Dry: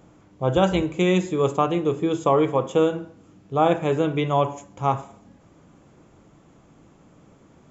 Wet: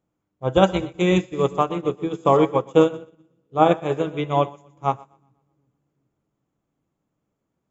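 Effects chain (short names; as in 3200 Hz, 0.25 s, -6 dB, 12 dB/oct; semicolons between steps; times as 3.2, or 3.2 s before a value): split-band echo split 330 Hz, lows 0.373 s, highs 0.124 s, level -9.5 dB; upward expander 2.5:1, over -35 dBFS; gain +5 dB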